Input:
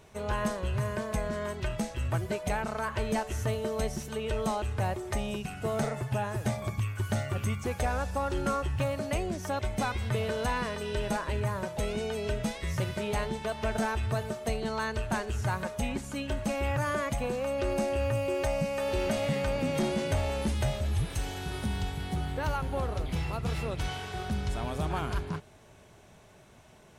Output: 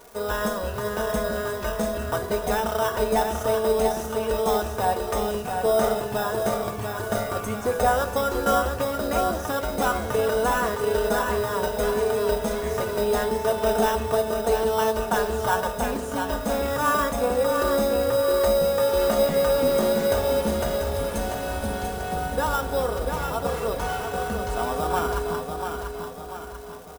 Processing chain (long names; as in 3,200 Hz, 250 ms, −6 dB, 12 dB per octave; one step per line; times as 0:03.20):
flat-topped bell 740 Hz +10 dB 2.5 octaves
repeating echo 691 ms, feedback 48%, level −6 dB
on a send at −9 dB: convolution reverb RT60 1.1 s, pre-delay 3 ms
on the sum: surface crackle 350 per second −39 dBFS
in parallel at −9 dB: decimation without filtering 10×
on the sum: high-shelf EQ 7,200 Hz +11.5 dB
comb filter 4.2 ms, depth 55%
level −4.5 dB